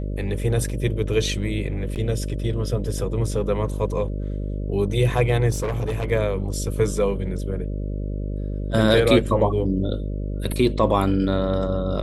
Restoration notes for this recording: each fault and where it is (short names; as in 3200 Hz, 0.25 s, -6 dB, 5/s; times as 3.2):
buzz 50 Hz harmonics 12 -27 dBFS
1.95–1.96 gap 8.7 ms
5.5–6.06 clipped -20.5 dBFS